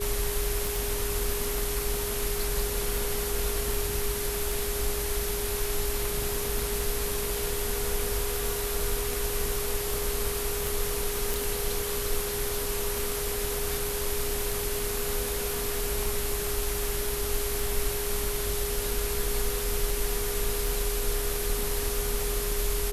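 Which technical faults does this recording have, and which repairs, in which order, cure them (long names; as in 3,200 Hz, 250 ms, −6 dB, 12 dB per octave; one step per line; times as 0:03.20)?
scratch tick 78 rpm
whistle 410 Hz −33 dBFS
0:00.76: click
0:11.34: click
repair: click removal
notch filter 410 Hz, Q 30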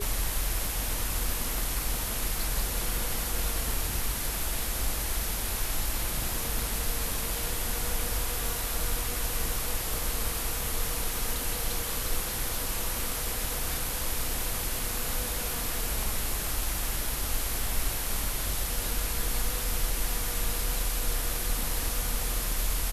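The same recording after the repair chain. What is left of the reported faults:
none of them is left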